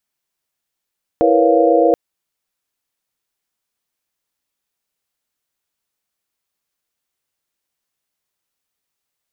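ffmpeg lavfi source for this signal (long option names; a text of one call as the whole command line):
ffmpeg -f lavfi -i "aevalsrc='0.158*(sin(2*PI*329.63*t)+sin(2*PI*466.16*t)+sin(2*PI*493.88*t)+sin(2*PI*554.37*t)+sin(2*PI*698.46*t))':duration=0.73:sample_rate=44100" out.wav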